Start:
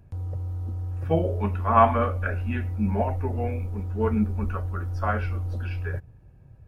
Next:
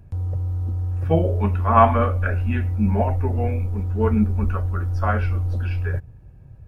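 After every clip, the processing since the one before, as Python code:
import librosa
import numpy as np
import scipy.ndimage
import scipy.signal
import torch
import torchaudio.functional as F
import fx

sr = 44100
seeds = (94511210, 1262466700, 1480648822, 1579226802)

y = fx.low_shelf(x, sr, hz=130.0, db=5.0)
y = F.gain(torch.from_numpy(y), 3.0).numpy()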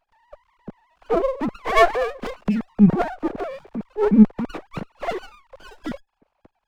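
y = fx.sine_speech(x, sr)
y = fx.dynamic_eq(y, sr, hz=2000.0, q=0.82, threshold_db=-35.0, ratio=4.0, max_db=-6)
y = fx.running_max(y, sr, window=17)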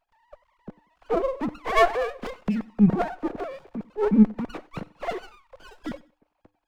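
y = fx.comb_fb(x, sr, f0_hz=100.0, decay_s=0.35, harmonics='odd', damping=0.0, mix_pct=40)
y = fx.echo_feedback(y, sr, ms=93, feedback_pct=30, wet_db=-22.5)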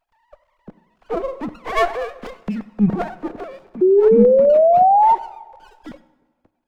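y = fx.rider(x, sr, range_db=3, speed_s=2.0)
y = fx.spec_paint(y, sr, seeds[0], shape='rise', start_s=3.81, length_s=1.34, low_hz=360.0, high_hz=930.0, level_db=-12.0)
y = fx.rev_plate(y, sr, seeds[1], rt60_s=1.4, hf_ratio=0.75, predelay_ms=0, drr_db=17.0)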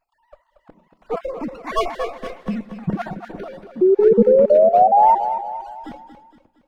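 y = fx.spec_dropout(x, sr, seeds[2], share_pct=33)
y = fx.echo_feedback(y, sr, ms=232, feedback_pct=46, wet_db=-10)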